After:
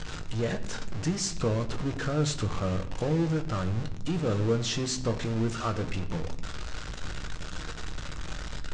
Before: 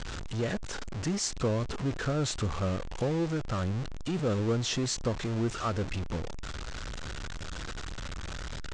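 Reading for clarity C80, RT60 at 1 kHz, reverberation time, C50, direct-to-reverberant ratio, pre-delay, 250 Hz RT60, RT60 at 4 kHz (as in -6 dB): 16.0 dB, 0.65 s, 0.80 s, 14.0 dB, 6.0 dB, 6 ms, 1.6 s, 0.55 s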